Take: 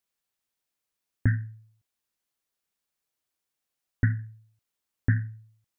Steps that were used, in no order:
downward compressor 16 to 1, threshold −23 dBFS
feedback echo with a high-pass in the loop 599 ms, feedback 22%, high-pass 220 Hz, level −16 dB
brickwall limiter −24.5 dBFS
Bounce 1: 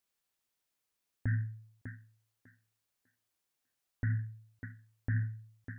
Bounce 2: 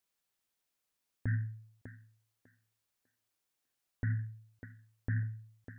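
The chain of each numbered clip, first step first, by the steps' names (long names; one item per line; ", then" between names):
feedback echo with a high-pass in the loop, then brickwall limiter, then downward compressor
downward compressor, then feedback echo with a high-pass in the loop, then brickwall limiter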